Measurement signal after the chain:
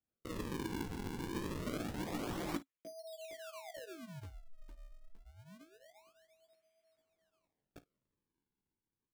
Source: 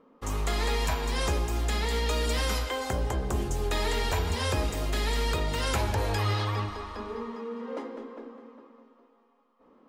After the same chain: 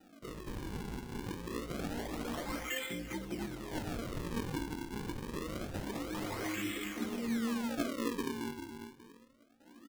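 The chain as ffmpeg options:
ffmpeg -i in.wav -filter_complex "[0:a]acrossover=split=290|1700[link_01][link_02][link_03];[link_03]crystalizer=i=1:c=0[link_04];[link_01][link_02][link_04]amix=inputs=3:normalize=0,aecho=1:1:5.8:0.95,dynaudnorm=framelen=290:gausssize=7:maxgain=7dB,flanger=delay=15.5:depth=2.1:speed=2.9,areverse,acompressor=threshold=-32dB:ratio=10,areverse,asplit=3[link_05][link_06][link_07];[link_05]bandpass=frequency=270:width_type=q:width=8,volume=0dB[link_08];[link_06]bandpass=frequency=2290:width_type=q:width=8,volume=-6dB[link_09];[link_07]bandpass=frequency=3010:width_type=q:width=8,volume=-9dB[link_10];[link_08][link_09][link_10]amix=inputs=3:normalize=0,acrusher=samples=40:mix=1:aa=0.000001:lfo=1:lforange=64:lforate=0.26,aecho=1:1:21|53:0.2|0.126,volume=14dB" out.wav

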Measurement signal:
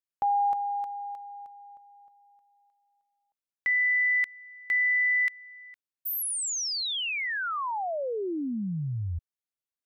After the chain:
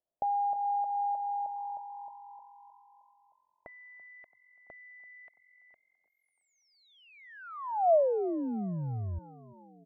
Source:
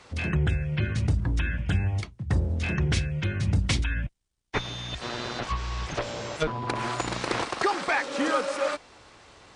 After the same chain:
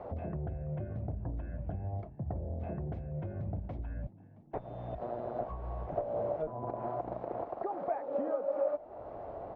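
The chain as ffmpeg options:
ffmpeg -i in.wav -filter_complex "[0:a]acompressor=threshold=-38dB:ratio=12:attack=0.6:release=324:knee=6:detection=rms,lowpass=frequency=660:width_type=q:width=4.9,asplit=6[link_01][link_02][link_03][link_04][link_05][link_06];[link_02]adelay=335,afreqshift=44,volume=-20dB[link_07];[link_03]adelay=670,afreqshift=88,volume=-24.3dB[link_08];[link_04]adelay=1005,afreqshift=132,volume=-28.6dB[link_09];[link_05]adelay=1340,afreqshift=176,volume=-32.9dB[link_10];[link_06]adelay=1675,afreqshift=220,volume=-37.2dB[link_11];[link_01][link_07][link_08][link_09][link_10][link_11]amix=inputs=6:normalize=0,volume=5.5dB" out.wav

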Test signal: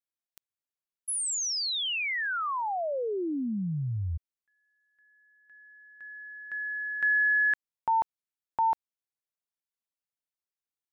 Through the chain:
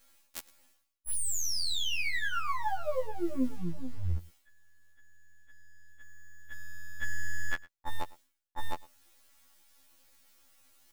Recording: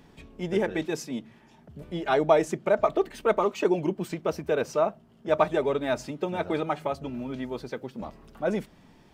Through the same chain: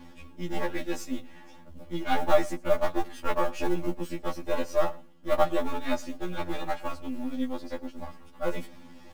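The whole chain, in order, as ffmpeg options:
ffmpeg -i in.wav -filter_complex "[0:a]aeval=exprs='if(lt(val(0),0),0.251*val(0),val(0))':channel_layout=same,aecho=1:1:3.6:0.93,areverse,acompressor=mode=upward:threshold=-38dB:ratio=2.5:attack=16:release=208:knee=2.83:detection=peak,areverse,acrusher=bits=7:mode=log:mix=0:aa=0.000001,asplit=2[link_01][link_02];[link_02]aecho=0:1:108:0.0841[link_03];[link_01][link_03]amix=inputs=2:normalize=0,afftfilt=real='re*2*eq(mod(b,4),0)':imag='im*2*eq(mod(b,4),0)':win_size=2048:overlap=0.75" out.wav

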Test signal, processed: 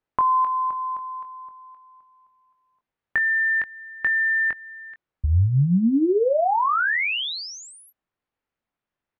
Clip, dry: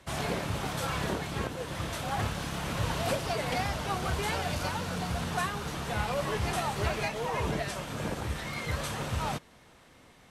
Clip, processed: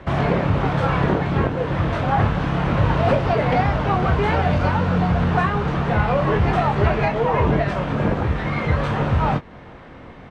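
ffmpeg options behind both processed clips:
ffmpeg -i in.wav -filter_complex "[0:a]lowpass=2000,lowshelf=frequency=440:gain=3.5,asplit=2[link_01][link_02];[link_02]acompressor=threshold=-39dB:ratio=6,volume=1dB[link_03];[link_01][link_03]amix=inputs=2:normalize=0,asplit=2[link_04][link_05];[link_05]adelay=22,volume=-8dB[link_06];[link_04][link_06]amix=inputs=2:normalize=0,volume=8.5dB" out.wav

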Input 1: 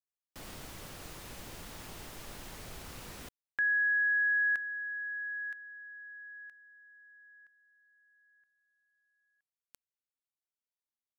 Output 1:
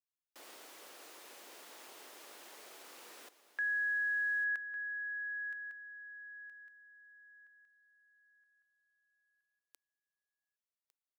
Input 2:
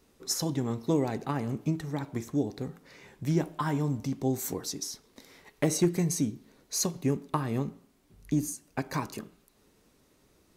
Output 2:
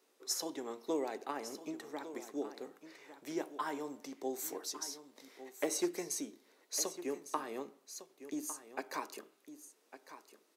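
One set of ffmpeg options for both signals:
ffmpeg -i in.wav -af "highpass=frequency=340:width=0.5412,highpass=frequency=340:width=1.3066,aecho=1:1:1154:0.224,volume=-5.5dB" out.wav

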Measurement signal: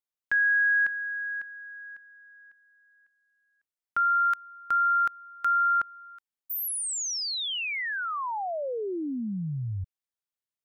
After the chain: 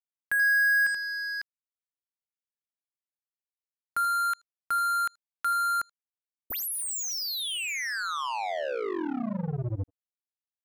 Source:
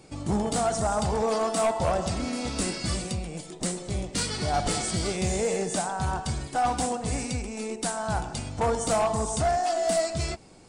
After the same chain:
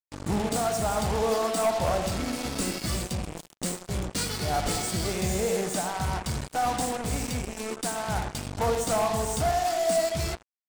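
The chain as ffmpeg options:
ffmpeg -i in.wav -filter_complex "[0:a]asplit=2[link_01][link_02];[link_02]adelay=80,lowpass=frequency=1100:poles=1,volume=-7.5dB,asplit=2[link_03][link_04];[link_04]adelay=80,lowpass=frequency=1100:poles=1,volume=0.21,asplit=2[link_05][link_06];[link_06]adelay=80,lowpass=frequency=1100:poles=1,volume=0.21[link_07];[link_01][link_03][link_05][link_07]amix=inputs=4:normalize=0,acrusher=bits=4:mix=0:aa=0.5,volume=-1.5dB" out.wav

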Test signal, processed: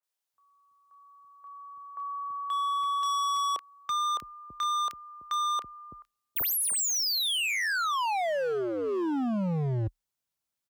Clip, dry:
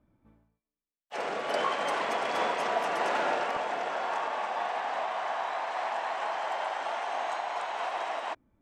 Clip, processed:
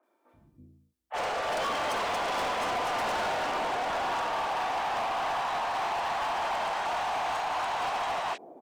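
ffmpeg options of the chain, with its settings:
ffmpeg -i in.wav -filter_complex "[0:a]lowshelf=frequency=150:gain=3.5,asplit=2[link_01][link_02];[link_02]alimiter=level_in=1dB:limit=-24dB:level=0:latency=1,volume=-1dB,volume=1.5dB[link_03];[link_01][link_03]amix=inputs=2:normalize=0,acrossover=split=380|2100[link_04][link_05][link_06];[link_06]adelay=30[link_07];[link_04]adelay=330[link_08];[link_08][link_05][link_07]amix=inputs=3:normalize=0,afreqshift=31,volume=27.5dB,asoftclip=hard,volume=-27.5dB" out.wav

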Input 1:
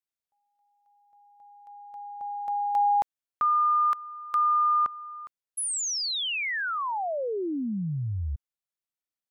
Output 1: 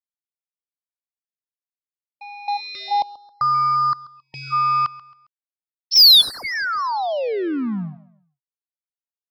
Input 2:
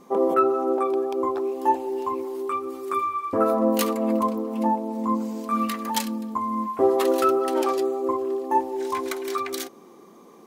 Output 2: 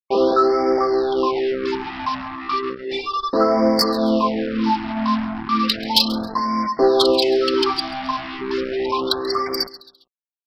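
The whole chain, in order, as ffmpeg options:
ffmpeg -i in.wav -af "afftfilt=real='re*gte(hypot(re,im),0.0224)':imag='im*gte(hypot(re,im),0.0224)':win_size=1024:overlap=0.75,highpass=frequency=160:width=0.5412,highpass=frequency=160:width=1.3066,aexciter=amount=14.3:drive=1.5:freq=3200,aresample=11025,acrusher=bits=4:mix=0:aa=0.5,aresample=44100,apsyclip=5.5dB,asoftclip=type=tanh:threshold=-6.5dB,aecho=1:1:135|270|405:0.119|0.0404|0.0137,afftfilt=real='re*(1-between(b*sr/1024,410*pow(3300/410,0.5+0.5*sin(2*PI*0.34*pts/sr))/1.41,410*pow(3300/410,0.5+0.5*sin(2*PI*0.34*pts/sr))*1.41))':imag='im*(1-between(b*sr/1024,410*pow(3300/410,0.5+0.5*sin(2*PI*0.34*pts/sr))/1.41,410*pow(3300/410,0.5+0.5*sin(2*PI*0.34*pts/sr))*1.41))':win_size=1024:overlap=0.75" out.wav

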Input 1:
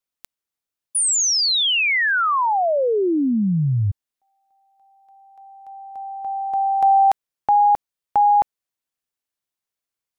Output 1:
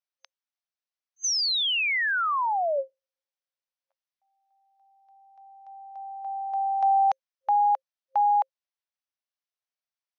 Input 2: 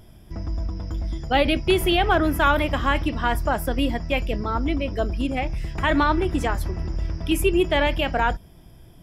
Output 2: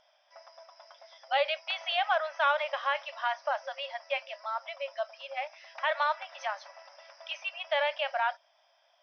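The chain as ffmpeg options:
ffmpeg -i in.wav -af "afftfilt=real='re*between(b*sr/4096,530,6300)':imag='im*between(b*sr/4096,530,6300)':win_size=4096:overlap=0.75,volume=-6.5dB" out.wav

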